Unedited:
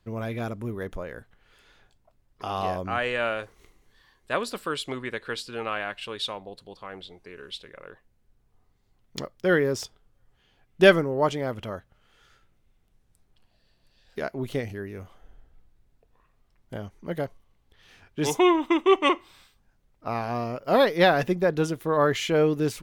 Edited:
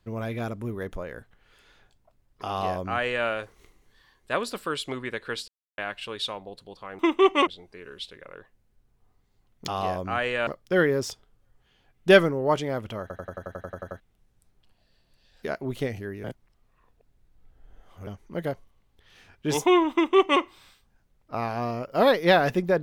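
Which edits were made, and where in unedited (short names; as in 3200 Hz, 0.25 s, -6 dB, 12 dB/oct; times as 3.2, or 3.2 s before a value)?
2.48–3.27 copy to 9.2
5.48–5.78 mute
11.74 stutter in place 0.09 s, 11 plays
14.97–16.8 reverse
18.66–19.14 copy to 6.99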